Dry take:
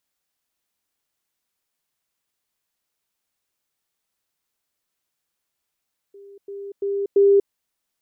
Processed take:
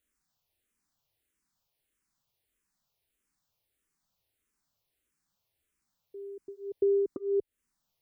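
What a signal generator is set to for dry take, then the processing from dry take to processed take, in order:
level staircase 399 Hz −41 dBFS, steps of 10 dB, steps 4, 0.24 s 0.10 s
low-shelf EQ 240 Hz +11 dB
downward compressor 10 to 1, threshold −22 dBFS
frequency shifter mixed with the dry sound −1.6 Hz

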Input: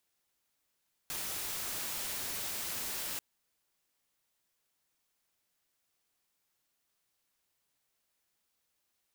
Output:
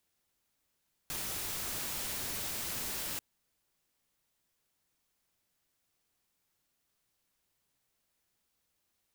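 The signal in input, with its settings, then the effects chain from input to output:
noise white, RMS −38 dBFS 2.09 s
low-shelf EQ 300 Hz +7 dB

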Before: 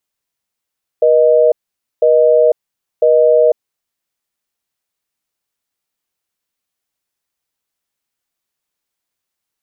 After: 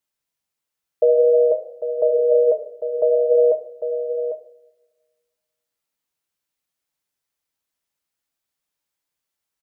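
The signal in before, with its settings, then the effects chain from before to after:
call progress tone busy tone, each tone −9.5 dBFS 2.97 s
flanger 0.56 Hz, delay 7.4 ms, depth 5.6 ms, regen −86%
on a send: single-tap delay 799 ms −9.5 dB
on the sum: coupled-rooms reverb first 0.51 s, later 1.6 s, DRR 6 dB

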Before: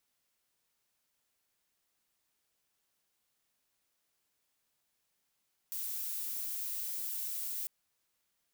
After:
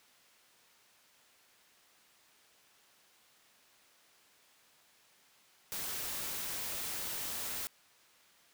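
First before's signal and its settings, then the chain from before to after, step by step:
noise violet, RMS −38 dBFS 1.95 s
low-shelf EQ 250 Hz +10 dB
mid-hump overdrive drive 24 dB, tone 4,000 Hz, clips at −24.5 dBFS

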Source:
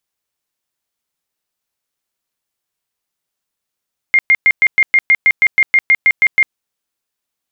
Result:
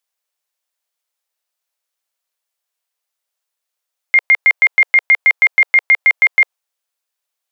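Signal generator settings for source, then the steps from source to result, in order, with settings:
tone bursts 2,120 Hz, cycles 103, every 0.16 s, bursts 15, −6 dBFS
Chebyshev high-pass filter 530 Hz, order 3
dynamic equaliser 870 Hz, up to +6 dB, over −30 dBFS, Q 0.93

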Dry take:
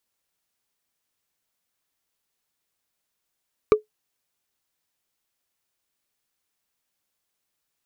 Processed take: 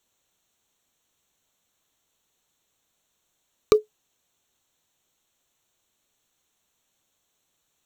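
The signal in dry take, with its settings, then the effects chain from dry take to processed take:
struck wood, lowest mode 427 Hz, decay 0.13 s, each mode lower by 7 dB, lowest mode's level −7 dB
adaptive Wiener filter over 9 samples
high shelf with overshoot 3,100 Hz +12.5 dB, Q 1.5
in parallel at −1 dB: compressor whose output falls as the input rises −23 dBFS, ratio −0.5

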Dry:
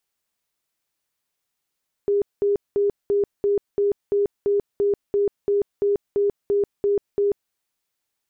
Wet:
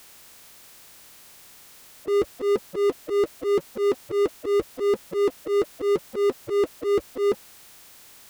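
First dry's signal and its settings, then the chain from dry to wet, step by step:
tone bursts 405 Hz, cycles 56, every 0.34 s, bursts 16, −16.5 dBFS
spectral magnitudes quantised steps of 30 dB
volume swells 107 ms
power curve on the samples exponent 0.5

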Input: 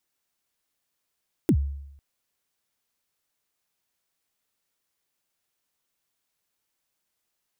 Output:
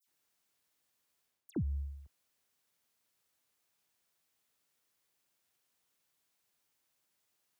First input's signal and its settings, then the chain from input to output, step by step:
synth kick length 0.50 s, from 380 Hz, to 70 Hz, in 70 ms, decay 0.83 s, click on, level −14 dB
reversed playback
downward compressor 8 to 1, threshold −32 dBFS
reversed playback
high-pass filter 61 Hz
all-pass dispersion lows, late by 74 ms, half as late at 2,900 Hz

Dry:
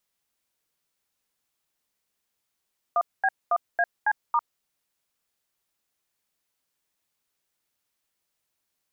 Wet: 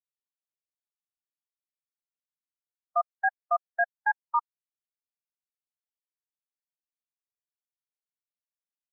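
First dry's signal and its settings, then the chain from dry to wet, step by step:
touch tones "1B1AC*", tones 52 ms, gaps 224 ms, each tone −21.5 dBFS
every bin expanded away from the loudest bin 1.5 to 1

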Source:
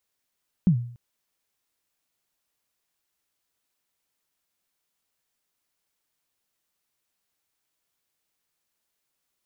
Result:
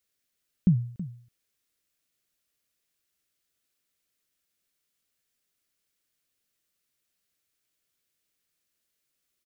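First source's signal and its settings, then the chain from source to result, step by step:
synth kick length 0.29 s, from 200 Hz, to 120 Hz, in 89 ms, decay 0.54 s, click off, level −12 dB
parametric band 890 Hz −11 dB 0.69 octaves
single-tap delay 325 ms −14.5 dB

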